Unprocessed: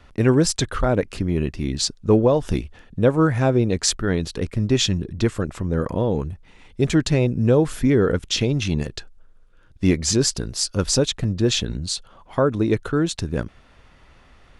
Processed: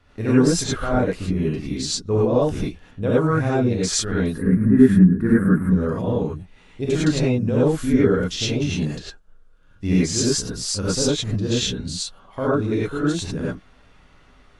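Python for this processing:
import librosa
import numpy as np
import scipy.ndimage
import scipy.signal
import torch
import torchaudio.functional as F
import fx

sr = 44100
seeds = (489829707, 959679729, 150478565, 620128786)

y = fx.curve_eq(x, sr, hz=(120.0, 190.0, 690.0, 1700.0, 3000.0, 6700.0, 9400.0), db=(0, 14, -6, 10, -24, -28, 3), at=(4.26, 5.66))
y = fx.rev_gated(y, sr, seeds[0], gate_ms=130, shape='rising', drr_db=-8.0)
y = y * librosa.db_to_amplitude(-9.5)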